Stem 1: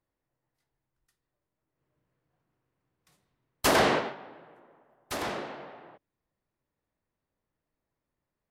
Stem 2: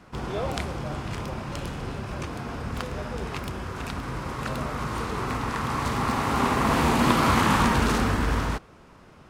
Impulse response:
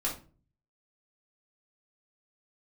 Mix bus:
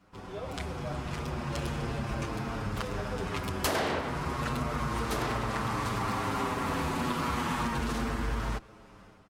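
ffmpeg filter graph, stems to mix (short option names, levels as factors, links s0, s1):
-filter_complex "[0:a]volume=1.33[s0];[1:a]dynaudnorm=f=410:g=3:m=4.47,asplit=2[s1][s2];[s2]adelay=7.4,afreqshift=-0.32[s3];[s1][s3]amix=inputs=2:normalize=1,volume=0.376[s4];[s0][s4]amix=inputs=2:normalize=0,acompressor=threshold=0.0398:ratio=4"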